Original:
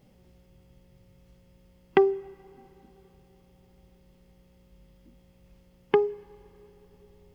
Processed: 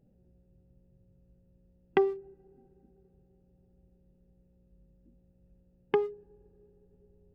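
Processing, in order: Wiener smoothing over 41 samples; gain -5 dB

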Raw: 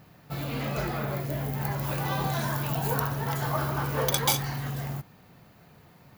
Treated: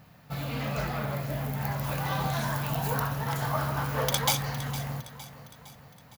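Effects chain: bell 360 Hz -11.5 dB 0.38 oct; feedback echo 0.46 s, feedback 51%, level -14.5 dB; Doppler distortion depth 0.11 ms

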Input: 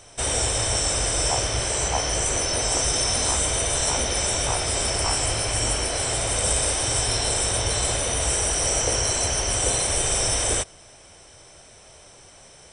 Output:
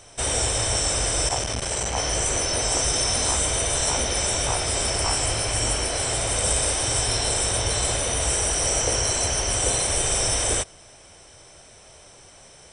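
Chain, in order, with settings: 1.28–1.97 core saturation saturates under 480 Hz

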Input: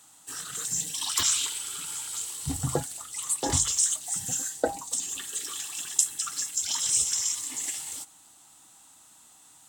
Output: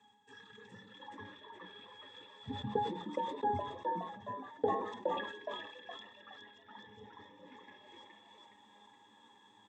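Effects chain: speaker cabinet 230–7300 Hz, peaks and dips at 610 Hz -7 dB, 2600 Hz +9 dB, 4200 Hz -6 dB; treble ducked by the level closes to 970 Hz, closed at -29 dBFS; transient shaper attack +4 dB, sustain -4 dB; reverse; upward compressor, threshold -41 dBFS; reverse; octave resonator G#, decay 0.14 s; frequency-shifting echo 0.417 s, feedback 43%, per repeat +85 Hz, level -3 dB; on a send at -22 dB: reverb RT60 0.65 s, pre-delay 93 ms; on the sum: sustainer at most 60 dB/s; gain +5.5 dB

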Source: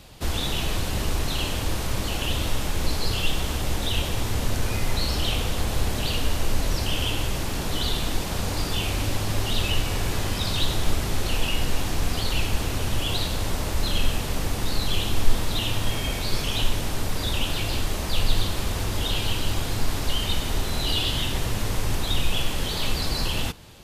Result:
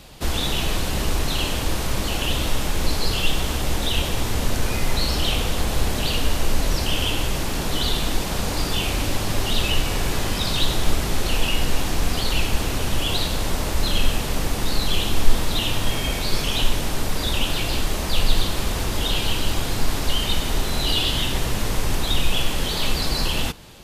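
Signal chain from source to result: bell 94 Hz -7 dB 0.45 oct; gain +3.5 dB

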